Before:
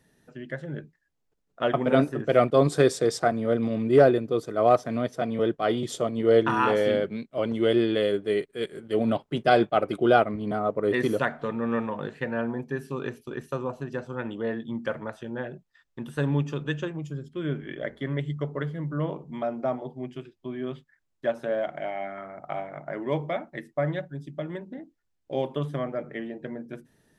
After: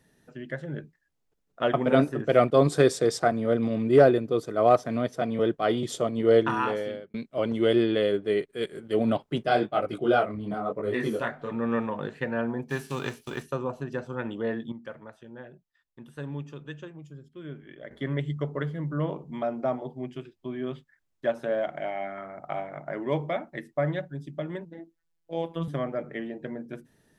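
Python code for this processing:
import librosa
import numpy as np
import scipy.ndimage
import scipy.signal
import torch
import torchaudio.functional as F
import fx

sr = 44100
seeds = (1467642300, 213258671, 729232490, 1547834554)

y = fx.high_shelf(x, sr, hz=6800.0, db=-7.0, at=(7.83, 8.49))
y = fx.detune_double(y, sr, cents=35, at=(9.44, 11.5), fade=0.02)
y = fx.envelope_flatten(y, sr, power=0.6, at=(12.69, 13.42), fade=0.02)
y = fx.robotise(y, sr, hz=166.0, at=(24.65, 25.68))
y = fx.edit(y, sr, fx.fade_out_span(start_s=6.33, length_s=0.81),
    fx.clip_gain(start_s=14.72, length_s=3.19, db=-10.5), tone=tone)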